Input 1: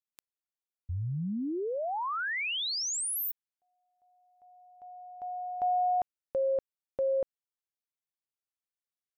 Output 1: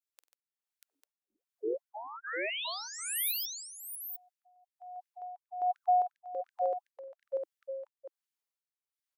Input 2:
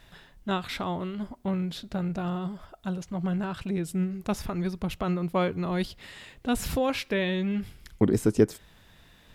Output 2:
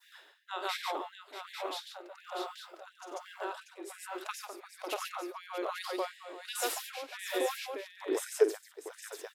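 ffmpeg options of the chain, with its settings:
-af "adynamicequalizer=threshold=0.00447:dfrequency=2400:dqfactor=0.71:tfrequency=2400:tqfactor=0.71:attack=5:release=100:ratio=0.375:range=3.5:mode=cutabove:tftype=bell,aecho=1:1:48|94|142|639|847:0.266|0.158|0.668|0.596|0.422,tremolo=f=1.2:d=0.75,afftfilt=real='re*gte(b*sr/1024,280*pow(1600/280,0.5+0.5*sin(2*PI*2.8*pts/sr)))':imag='im*gte(b*sr/1024,280*pow(1600/280,0.5+0.5*sin(2*PI*2.8*pts/sr)))':win_size=1024:overlap=0.75"

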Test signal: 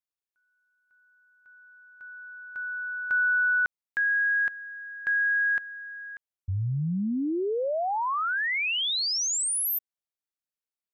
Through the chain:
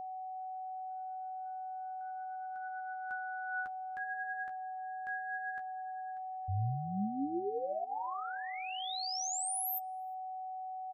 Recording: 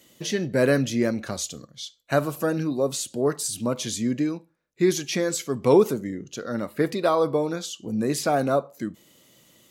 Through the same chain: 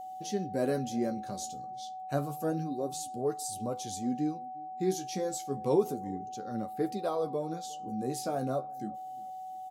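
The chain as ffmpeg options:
-filter_complex "[0:a]flanger=delay=9.1:depth=6.7:regen=29:speed=0.3:shape=sinusoidal,aeval=exprs='val(0)+0.0251*sin(2*PI*750*n/s)':c=same,equalizer=f=2k:w=0.78:g=-10,asplit=2[a][b];[b]adelay=356,lowpass=f=1.4k:p=1,volume=-24dB,asplit=2[c][d];[d]adelay=356,lowpass=f=1.4k:p=1,volume=0.36[e];[a][c][e]amix=inputs=3:normalize=0,volume=-5dB"

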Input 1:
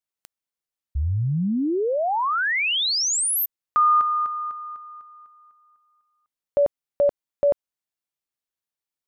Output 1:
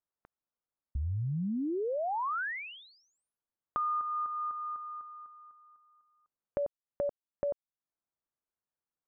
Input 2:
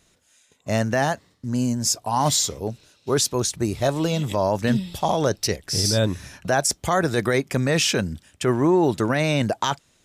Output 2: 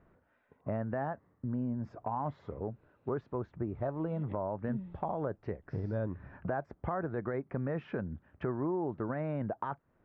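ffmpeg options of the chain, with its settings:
-af "lowpass=f=1.5k:w=0.5412,lowpass=f=1.5k:w=1.3066,acompressor=threshold=-33dB:ratio=4:attack=10:release=361:knee=6:detection=rms"

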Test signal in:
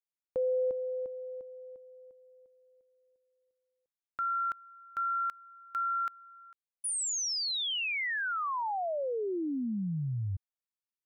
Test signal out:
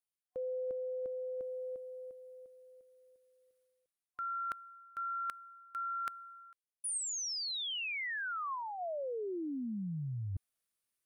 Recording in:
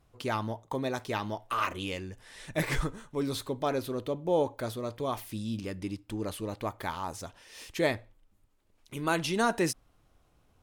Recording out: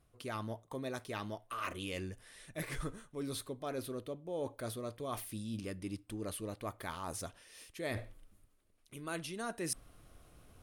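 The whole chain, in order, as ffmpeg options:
-af "superequalizer=9b=0.562:16b=2.24,areverse,acompressor=threshold=-45dB:ratio=5:attack=23:release=616:knee=1:detection=rms,areverse,volume=6.5dB"

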